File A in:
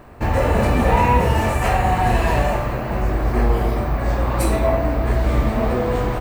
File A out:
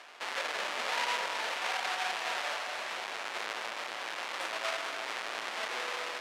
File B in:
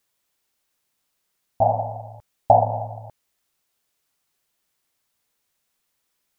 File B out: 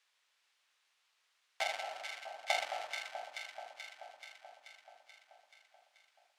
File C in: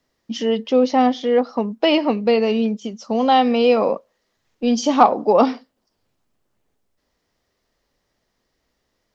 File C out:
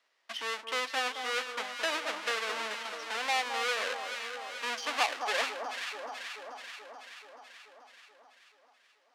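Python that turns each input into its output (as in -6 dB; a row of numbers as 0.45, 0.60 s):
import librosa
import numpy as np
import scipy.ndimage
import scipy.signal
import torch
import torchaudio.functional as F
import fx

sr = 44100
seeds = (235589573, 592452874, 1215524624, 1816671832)

p1 = fx.halfwave_hold(x, sr)
p2 = fx.bandpass_edges(p1, sr, low_hz=460.0, high_hz=2500.0)
p3 = np.diff(p2, prepend=0.0)
p4 = p3 + fx.echo_alternate(p3, sr, ms=216, hz=1300.0, feedback_pct=73, wet_db=-7.0, dry=0)
y = fx.band_squash(p4, sr, depth_pct=40)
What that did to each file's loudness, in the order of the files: -15.0, -19.0, -15.0 LU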